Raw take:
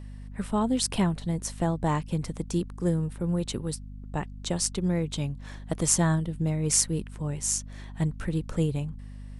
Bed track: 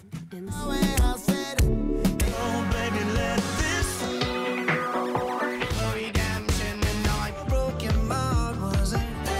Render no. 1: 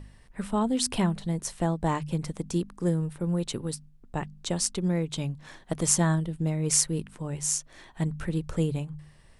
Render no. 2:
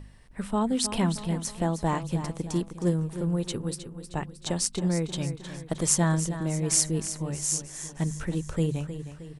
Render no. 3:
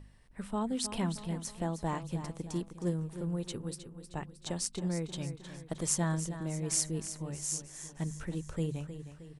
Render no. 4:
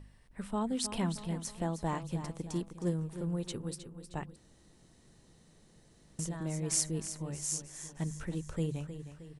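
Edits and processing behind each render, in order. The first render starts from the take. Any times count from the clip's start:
de-hum 50 Hz, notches 5
feedback echo 0.312 s, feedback 50%, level -11 dB
gain -7.5 dB
4.36–6.19 room tone

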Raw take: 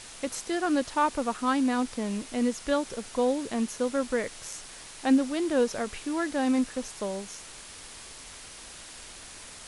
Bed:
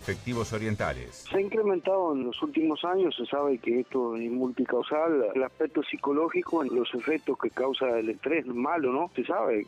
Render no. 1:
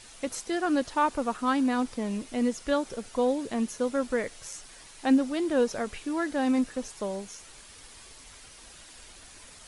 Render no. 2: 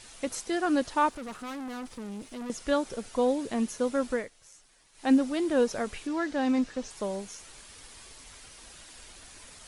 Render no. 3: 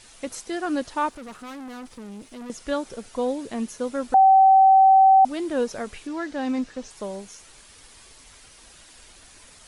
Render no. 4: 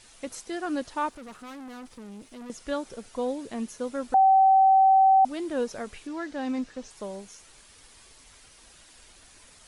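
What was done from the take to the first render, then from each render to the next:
denoiser 7 dB, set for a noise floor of -46 dBFS
1.09–2.5 tube stage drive 36 dB, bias 0.6; 4.11–5.11 dip -13.5 dB, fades 0.19 s; 6.07–6.91 Chebyshev low-pass 5800 Hz
4.14–5.25 bleep 769 Hz -10.5 dBFS
gain -4 dB

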